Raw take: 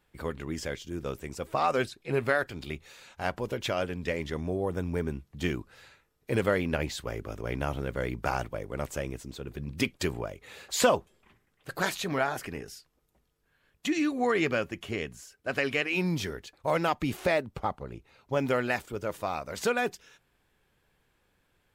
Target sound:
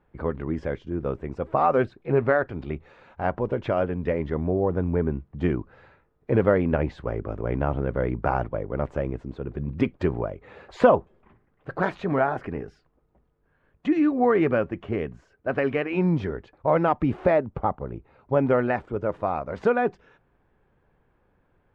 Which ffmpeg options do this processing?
-af "lowpass=1.2k,volume=7dB"

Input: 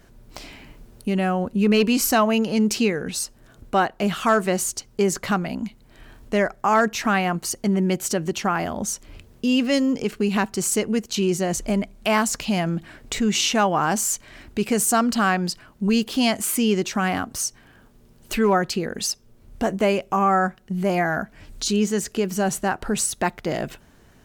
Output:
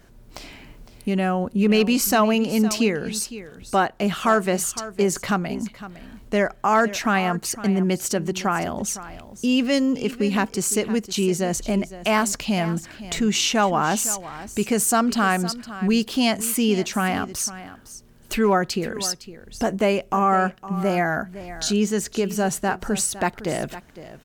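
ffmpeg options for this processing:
-af "aecho=1:1:509:0.178"

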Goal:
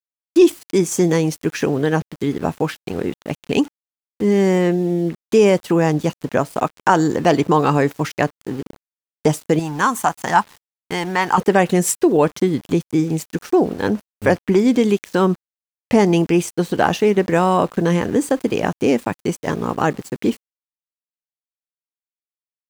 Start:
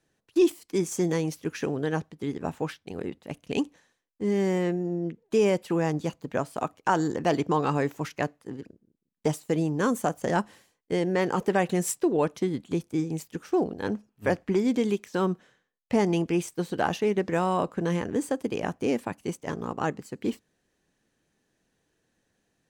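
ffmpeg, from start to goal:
-filter_complex "[0:a]asettb=1/sr,asplit=3[a][b][c];[a]atrim=end=9.594[d];[b]atrim=start=9.59:end=11.38,asetpts=PTS-STARTPTS,afade=t=in:d=0.004:c=qsin,afade=t=out:st=1.786:d=0.004:c=qsin,lowshelf=f=680:t=q:w=3:g=-8[e];[c]atrim=start=11.376[f];[d][e]acrossfade=d=0.004:c1=hsin:c2=qsin[g];[g][f]acrossfade=d=0.004:c1=qsin:c2=hsin,aeval=exprs='val(0)*gte(abs(val(0)),0.00447)':c=same,asplit=2[h][i];[i]acompressor=threshold=-39dB:ratio=6,volume=-1dB[j];[h][j]amix=inputs=2:normalize=0,volume=8.5dB"

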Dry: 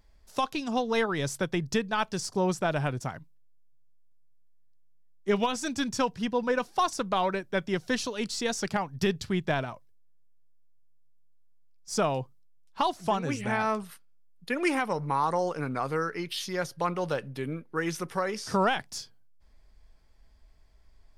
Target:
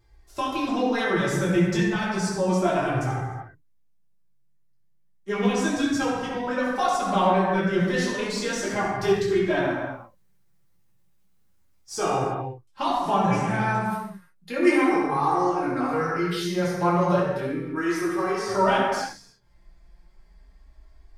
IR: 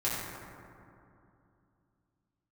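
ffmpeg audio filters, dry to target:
-filter_complex "[0:a]flanger=delay=2.5:depth=3.4:regen=6:speed=0.33:shape=sinusoidal,asettb=1/sr,asplit=3[a][b][c];[a]atrim=end=9.714[d];[b]atrim=start=9.71:end=11.98,asetpts=PTS-STARTPTS,afade=t=in:d=0.004:c=qsin,afade=t=out:st=2.266:d=0.004:c=qsin,acrusher=bits=8:mode=log:mix=0:aa=0.000001[e];[c]atrim=start=11.976[f];[d][e]acrossfade=d=0.004:c1=hsin:c2=qsin[g];[g][f]acrossfade=d=0.004:c1=qsin:c2=hsin[h];[1:a]atrim=start_sample=2205,afade=t=out:st=0.42:d=0.01,atrim=end_sample=18963[i];[h][i]afir=irnorm=-1:irlink=0"

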